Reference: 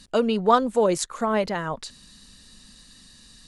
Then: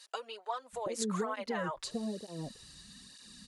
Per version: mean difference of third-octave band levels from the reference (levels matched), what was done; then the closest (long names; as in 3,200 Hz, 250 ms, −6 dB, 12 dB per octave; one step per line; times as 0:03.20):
9.5 dB: downward compressor 12 to 1, threshold −27 dBFS, peak gain reduction 16 dB
multiband delay without the direct sound highs, lows 730 ms, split 560 Hz
through-zero flanger with one copy inverted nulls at 1.1 Hz, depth 4.9 ms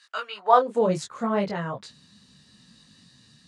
4.0 dB: high-pass filter sweep 1,400 Hz → 120 Hz, 0:00.31–0:01.00
high-frequency loss of the air 66 metres
micro pitch shift up and down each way 24 cents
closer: second